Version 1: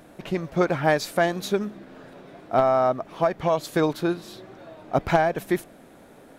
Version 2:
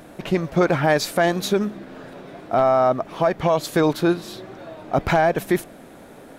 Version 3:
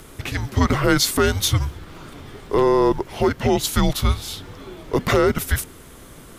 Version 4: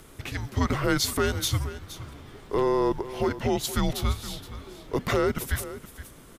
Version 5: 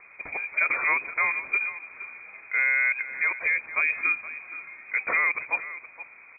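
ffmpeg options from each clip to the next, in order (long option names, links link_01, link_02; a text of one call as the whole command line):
ffmpeg -i in.wav -af "alimiter=limit=-15dB:level=0:latency=1:release=11,volume=6dB" out.wav
ffmpeg -i in.wav -af "highshelf=frequency=3100:gain=10.5,afreqshift=-280" out.wav
ffmpeg -i in.wav -af "aecho=1:1:470:0.188,volume=-7dB" out.wav
ffmpeg -i in.wav -af "lowpass=frequency=2100:width_type=q:width=0.5098,lowpass=frequency=2100:width_type=q:width=0.6013,lowpass=frequency=2100:width_type=q:width=0.9,lowpass=frequency=2100:width_type=q:width=2.563,afreqshift=-2500" out.wav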